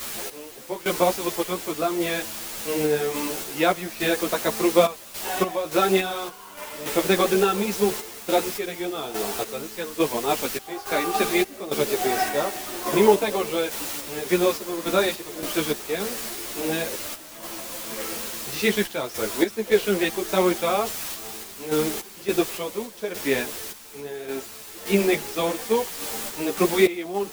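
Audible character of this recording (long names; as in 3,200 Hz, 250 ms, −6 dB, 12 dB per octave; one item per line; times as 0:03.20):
a quantiser's noise floor 6 bits, dither triangular
sample-and-hold tremolo, depth 85%
a shimmering, thickened sound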